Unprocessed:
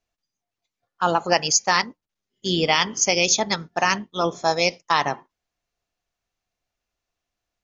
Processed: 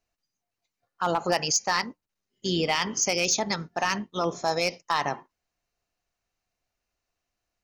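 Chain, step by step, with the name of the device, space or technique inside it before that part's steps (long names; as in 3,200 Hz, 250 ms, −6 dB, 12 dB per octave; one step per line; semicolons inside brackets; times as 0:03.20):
notch filter 3,400 Hz, Q 10
clipper into limiter (hard clipping −10 dBFS, distortion −19 dB; brickwall limiter −15.5 dBFS, peak gain reduction 5.5 dB)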